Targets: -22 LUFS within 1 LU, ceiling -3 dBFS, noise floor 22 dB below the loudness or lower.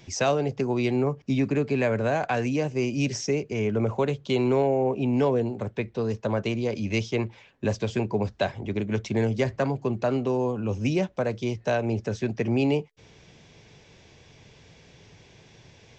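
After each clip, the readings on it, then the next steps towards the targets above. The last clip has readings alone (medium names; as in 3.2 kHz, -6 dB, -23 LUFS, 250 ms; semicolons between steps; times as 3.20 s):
loudness -26.5 LUFS; peak level -12.0 dBFS; loudness target -22.0 LUFS
-> trim +4.5 dB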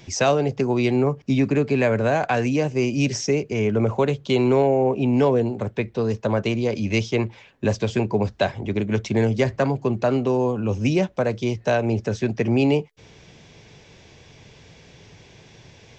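loudness -22.0 LUFS; peak level -7.5 dBFS; noise floor -50 dBFS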